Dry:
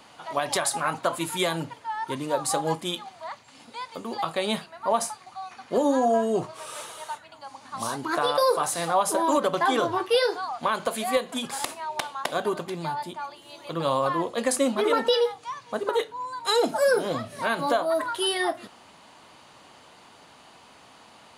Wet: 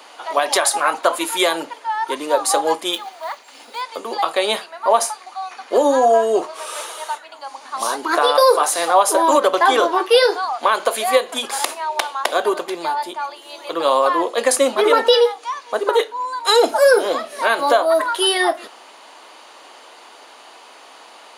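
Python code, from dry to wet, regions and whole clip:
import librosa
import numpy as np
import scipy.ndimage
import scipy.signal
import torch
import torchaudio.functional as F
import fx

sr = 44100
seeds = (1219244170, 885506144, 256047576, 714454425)

y = fx.chain(x, sr, fx.block_float(bits=5),
    fx.notch(hz=1100.0, q=24.0), at=(2.93, 3.83))
y = scipy.signal.sosfilt(scipy.signal.butter(4, 340.0, 'highpass', fs=sr, output='sos'), y)
y = fx.notch(y, sr, hz=7900.0, q=17.0)
y = y * 10.0 ** (9.0 / 20.0)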